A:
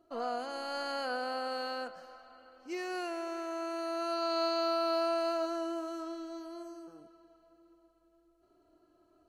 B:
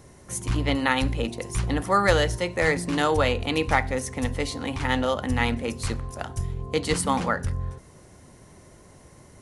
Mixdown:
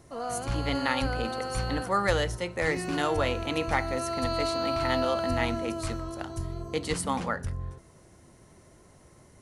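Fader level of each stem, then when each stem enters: +1.5, -5.5 dB; 0.00, 0.00 s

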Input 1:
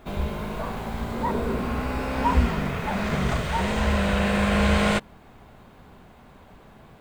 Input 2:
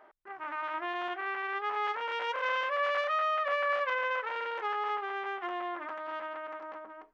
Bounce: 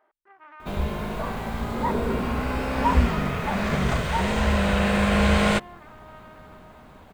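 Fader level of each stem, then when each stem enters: +1.0, -9.5 dB; 0.60, 0.00 s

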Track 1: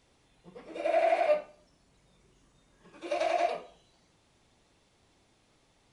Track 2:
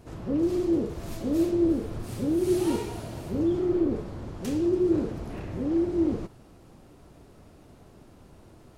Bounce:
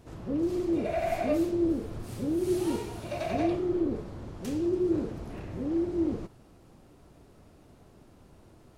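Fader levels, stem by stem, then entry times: -4.0, -3.5 dB; 0.00, 0.00 s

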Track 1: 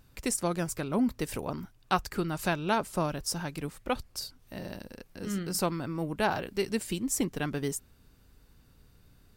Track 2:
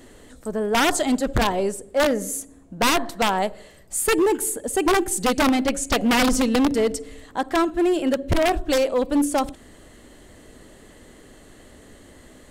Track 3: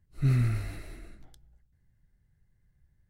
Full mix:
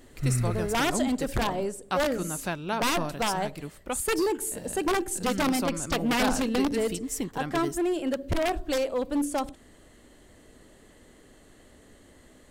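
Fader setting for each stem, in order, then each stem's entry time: -2.5, -7.0, -2.0 dB; 0.00, 0.00, 0.00 s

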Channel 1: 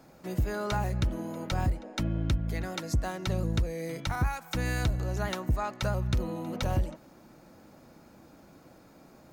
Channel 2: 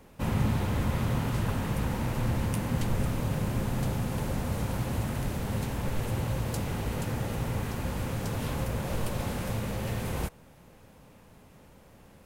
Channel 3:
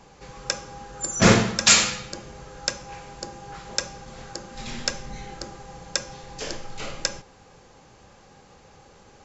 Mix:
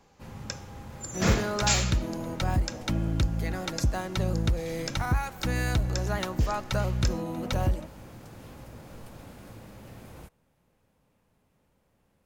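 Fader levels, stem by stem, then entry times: +2.0, -15.5, -10.5 dB; 0.90, 0.00, 0.00 s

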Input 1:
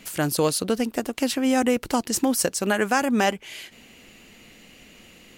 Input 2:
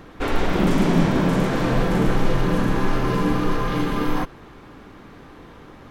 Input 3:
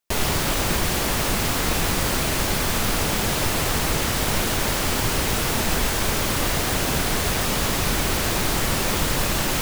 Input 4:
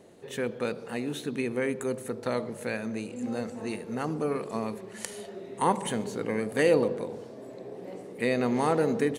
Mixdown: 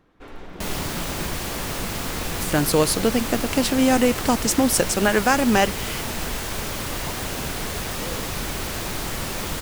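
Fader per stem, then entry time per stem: +3.0, -18.0, -6.0, -15.5 dB; 2.35, 0.00, 0.50, 1.40 s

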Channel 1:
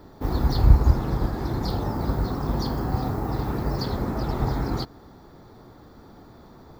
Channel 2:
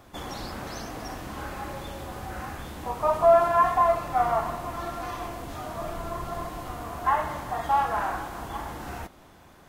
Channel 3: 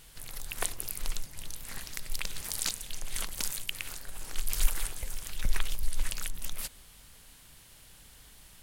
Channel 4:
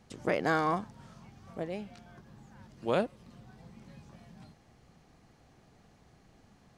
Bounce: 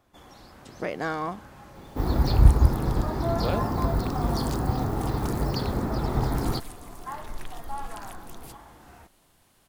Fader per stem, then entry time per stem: -0.5, -13.5, -10.5, -1.5 dB; 1.75, 0.00, 1.85, 0.55 s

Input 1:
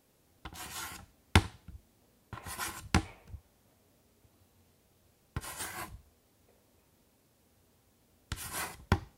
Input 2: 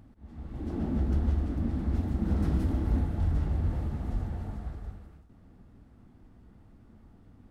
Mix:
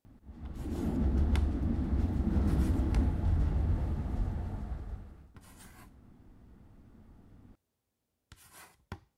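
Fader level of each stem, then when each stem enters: -16.0, -1.5 dB; 0.00, 0.05 s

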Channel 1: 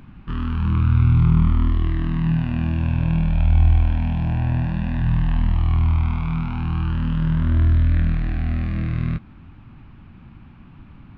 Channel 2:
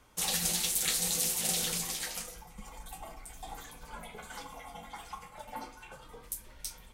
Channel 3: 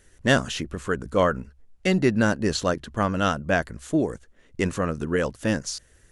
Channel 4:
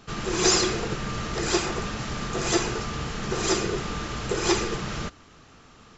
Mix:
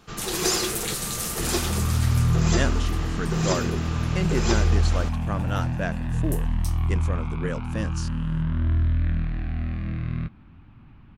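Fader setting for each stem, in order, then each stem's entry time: -5.5, 0.0, -7.5, -3.5 dB; 1.10, 0.00, 2.30, 0.00 s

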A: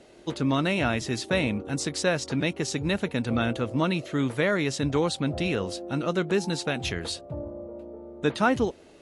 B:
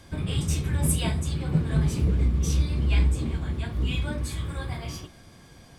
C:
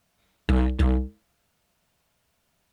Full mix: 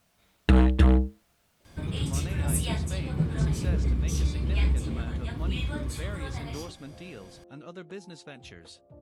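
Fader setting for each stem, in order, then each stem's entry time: -16.5, -3.0, +2.5 dB; 1.60, 1.65, 0.00 s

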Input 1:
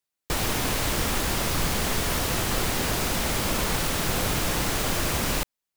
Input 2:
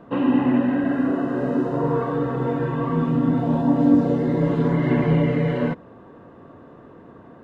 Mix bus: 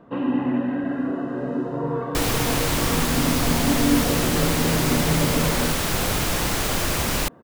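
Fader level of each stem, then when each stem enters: +2.5, -4.0 dB; 1.85, 0.00 s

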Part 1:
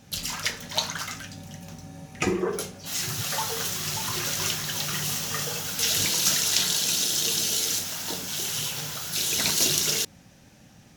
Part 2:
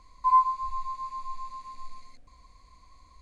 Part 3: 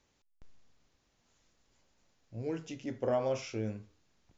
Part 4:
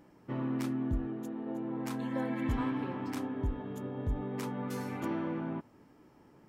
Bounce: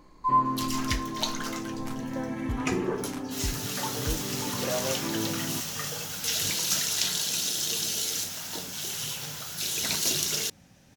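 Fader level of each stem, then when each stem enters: -4.0, -2.5, -1.0, +1.0 dB; 0.45, 0.00, 1.60, 0.00 s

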